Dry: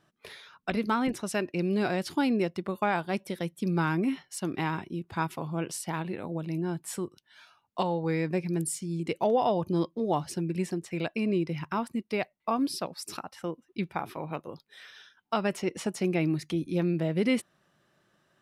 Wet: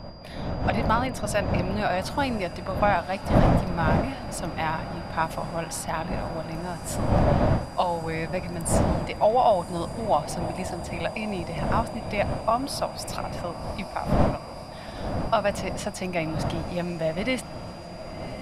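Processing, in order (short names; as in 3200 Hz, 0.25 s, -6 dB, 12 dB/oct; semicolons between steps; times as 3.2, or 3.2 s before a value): wind noise 240 Hz -25 dBFS; AGC gain up to 3.5 dB; resonant low shelf 500 Hz -6 dB, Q 3; on a send: diffused feedback echo 1.089 s, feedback 75%, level -15 dB; on the sum: whine 4800 Hz -51 dBFS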